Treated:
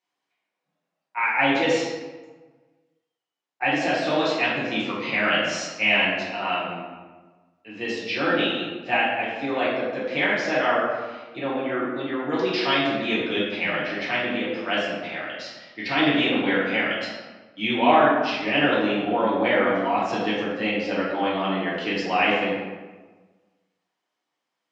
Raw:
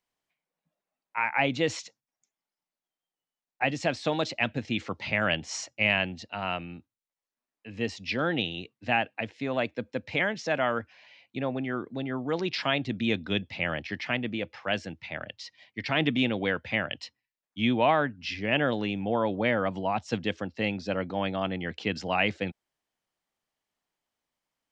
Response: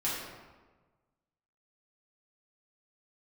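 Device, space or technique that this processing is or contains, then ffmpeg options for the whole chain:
supermarket ceiling speaker: -filter_complex "[0:a]highpass=240,lowpass=6700[link_01];[1:a]atrim=start_sample=2205[link_02];[link_01][link_02]afir=irnorm=-1:irlink=0"

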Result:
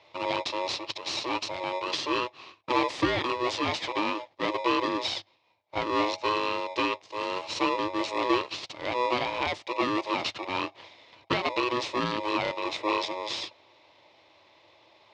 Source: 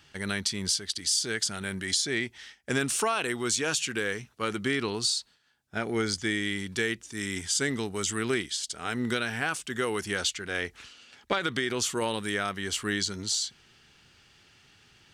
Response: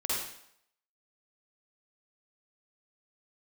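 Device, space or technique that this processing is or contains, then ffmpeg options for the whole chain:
ring modulator pedal into a guitar cabinet: -af "aeval=exprs='val(0)*sgn(sin(2*PI*740*n/s))':channel_layout=same,highpass=92,equalizer=frequency=100:width_type=q:width=4:gain=9,equalizer=frequency=190:width_type=q:width=4:gain=-4,equalizer=frequency=330:width_type=q:width=4:gain=8,equalizer=frequency=570:width_type=q:width=4:gain=5,equalizer=frequency=1000:width_type=q:width=4:gain=5,equalizer=frequency=1500:width_type=q:width=4:gain=-7,lowpass=frequency=4400:width=0.5412,lowpass=frequency=4400:width=1.3066"

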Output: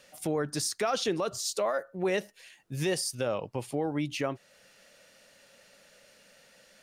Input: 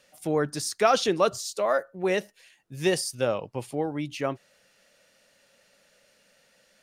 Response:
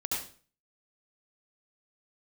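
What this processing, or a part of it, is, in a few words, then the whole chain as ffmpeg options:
stacked limiters: -af "alimiter=limit=-14.5dB:level=0:latency=1:release=222,alimiter=limit=-18dB:level=0:latency=1:release=56,alimiter=limit=-24dB:level=0:latency=1:release=356,volume=4dB"

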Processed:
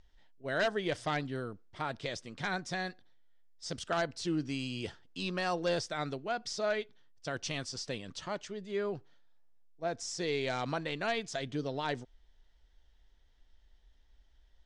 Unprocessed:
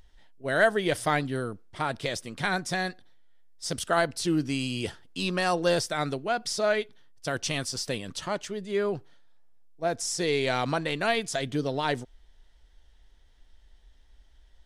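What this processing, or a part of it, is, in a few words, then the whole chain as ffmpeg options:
synthesiser wavefolder: -af "aeval=exprs='0.158*(abs(mod(val(0)/0.158+3,4)-2)-1)':channel_layout=same,lowpass=frequency=7200:width=0.5412,lowpass=frequency=7200:width=1.3066,volume=-7dB"

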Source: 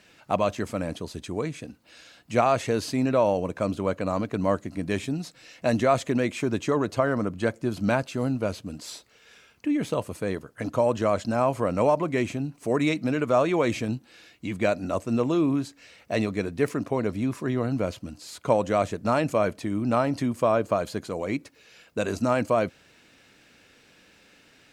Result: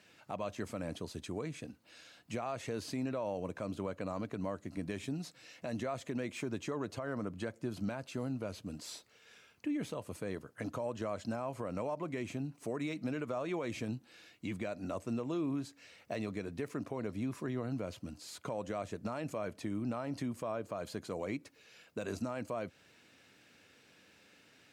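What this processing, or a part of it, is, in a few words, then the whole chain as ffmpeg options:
podcast mastering chain: -af "highpass=frequency=70:width=0.5412,highpass=frequency=70:width=1.3066,deesser=0.75,acompressor=threshold=-29dB:ratio=2,alimiter=limit=-21dB:level=0:latency=1:release=110,volume=-6dB" -ar 48000 -c:a libmp3lame -b:a 96k

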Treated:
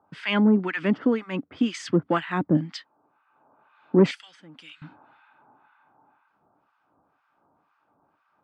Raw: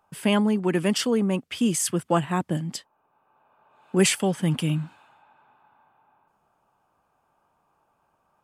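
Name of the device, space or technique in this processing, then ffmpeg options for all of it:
guitar amplifier with harmonic tremolo: -filter_complex "[0:a]acrossover=split=1100[link_01][link_02];[link_01]aeval=exprs='val(0)*(1-1/2+1/2*cos(2*PI*2*n/s))':channel_layout=same[link_03];[link_02]aeval=exprs='val(0)*(1-1/2-1/2*cos(2*PI*2*n/s))':channel_layout=same[link_04];[link_03][link_04]amix=inputs=2:normalize=0,asoftclip=type=tanh:threshold=-14.5dB,highpass=84,equalizer=frequency=290:width_type=q:width=4:gain=10,equalizer=frequency=1400:width_type=q:width=4:gain=5,equalizer=frequency=2000:width_type=q:width=4:gain=4,equalizer=frequency=2900:width_type=q:width=4:gain=-3,lowpass=frequency=4400:width=0.5412,lowpass=frequency=4400:width=1.3066,asettb=1/sr,asplit=3[link_05][link_06][link_07];[link_05]atrim=end=4.114[link_08];[link_06]atrim=start=4.11:end=4.82,asetpts=PTS-STARTPTS,afade=type=in:duration=0.004:curve=qsin,afade=type=out:start_time=0.706:duration=0.004:curve=qsin,aderivative[link_09];[link_07]atrim=start=4.816[link_10];[link_08][link_09]acrossfade=duration=0.004:curve1=hsin:curve2=qsin[link_11];[link_11][link_10]acrossfade=duration=0.004:curve1=qsin:curve2=hsin,volume=4.5dB"

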